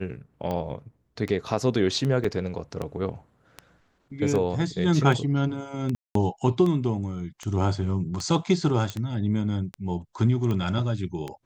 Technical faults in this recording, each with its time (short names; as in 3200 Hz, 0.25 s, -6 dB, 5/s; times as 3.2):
tick 78 rpm -18 dBFS
2.24 gap 4.6 ms
5.95–6.15 gap 0.203 s
8.9 pop -16 dBFS